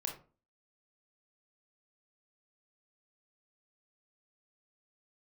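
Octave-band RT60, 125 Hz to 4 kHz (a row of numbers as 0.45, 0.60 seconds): 0.40, 0.45, 0.40, 0.35, 0.25, 0.20 seconds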